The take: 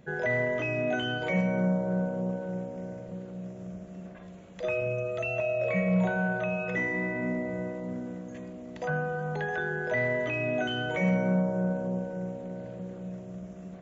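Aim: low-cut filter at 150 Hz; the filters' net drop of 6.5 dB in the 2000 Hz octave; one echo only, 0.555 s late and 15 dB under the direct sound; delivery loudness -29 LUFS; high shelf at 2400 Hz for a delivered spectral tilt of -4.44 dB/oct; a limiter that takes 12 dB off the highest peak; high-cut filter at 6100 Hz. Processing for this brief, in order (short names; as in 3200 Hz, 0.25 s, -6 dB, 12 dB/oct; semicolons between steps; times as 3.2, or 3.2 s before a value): HPF 150 Hz; LPF 6100 Hz; bell 2000 Hz -6.5 dB; high shelf 2400 Hz -4 dB; limiter -29 dBFS; echo 0.555 s -15 dB; gain +8.5 dB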